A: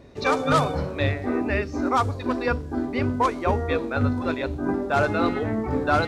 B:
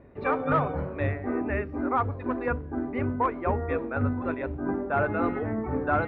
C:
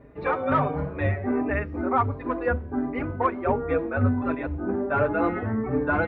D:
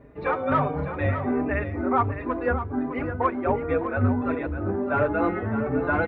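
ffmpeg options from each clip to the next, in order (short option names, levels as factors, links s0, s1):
-af "lowpass=f=2200:w=0.5412,lowpass=f=2200:w=1.3066,volume=0.631"
-filter_complex "[0:a]asplit=2[s0][s1];[s1]adelay=4.6,afreqshift=1.4[s2];[s0][s2]amix=inputs=2:normalize=1,volume=1.88"
-af "aecho=1:1:609:0.316"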